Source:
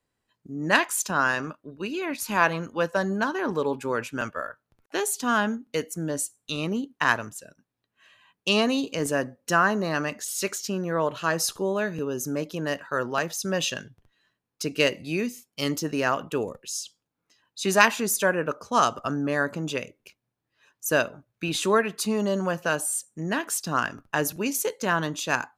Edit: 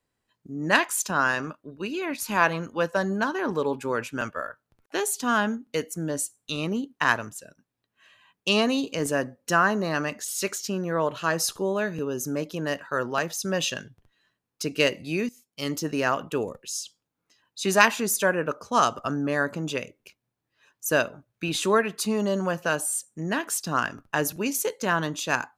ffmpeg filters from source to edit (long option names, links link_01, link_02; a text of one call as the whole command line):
ffmpeg -i in.wav -filter_complex "[0:a]asplit=2[link_01][link_02];[link_01]atrim=end=15.29,asetpts=PTS-STARTPTS,afade=type=out:start_time=15.286:duration=0.004:curve=hsin:silence=0.199526[link_03];[link_02]atrim=start=15.29,asetpts=PTS-STARTPTS,afade=type=in:duration=0.57:silence=0.199526[link_04];[link_03][link_04]concat=n=2:v=0:a=1" out.wav